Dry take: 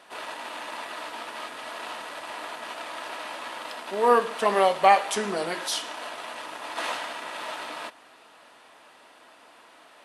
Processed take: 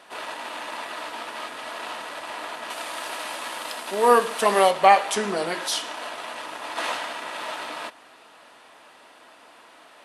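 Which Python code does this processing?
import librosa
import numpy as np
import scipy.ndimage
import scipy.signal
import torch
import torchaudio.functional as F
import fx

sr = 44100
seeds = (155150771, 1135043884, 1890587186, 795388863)

y = fx.high_shelf(x, sr, hz=6100.0, db=11.5, at=(2.7, 4.71))
y = F.gain(torch.from_numpy(y), 2.5).numpy()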